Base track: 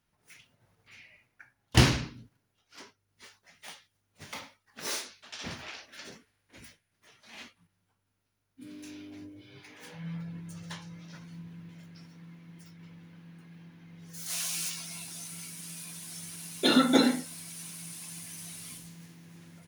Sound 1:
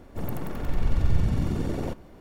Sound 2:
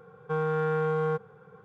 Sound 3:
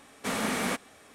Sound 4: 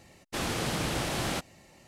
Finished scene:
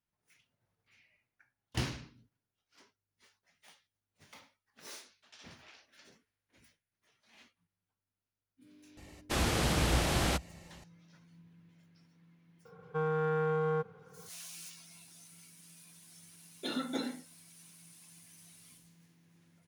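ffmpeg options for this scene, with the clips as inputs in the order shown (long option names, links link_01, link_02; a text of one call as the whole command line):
ffmpeg -i bed.wav -i cue0.wav -i cue1.wav -i cue2.wav -i cue3.wav -filter_complex "[0:a]volume=-14dB[link_01];[4:a]equalizer=frequency=63:width_type=o:width=0.64:gain=13,atrim=end=1.87,asetpts=PTS-STARTPTS,afade=type=in:duration=0.004:curve=hsin,afade=type=out:start_time=1.866:duration=0.004:curve=hsin,adelay=8970[link_02];[2:a]atrim=end=1.64,asetpts=PTS-STARTPTS,volume=-4dB,afade=type=in:duration=0.004:curve=hsin,afade=type=out:start_time=1.636:duration=0.004:curve=hsin,adelay=12650[link_03];[link_01][link_02][link_03]amix=inputs=3:normalize=0" out.wav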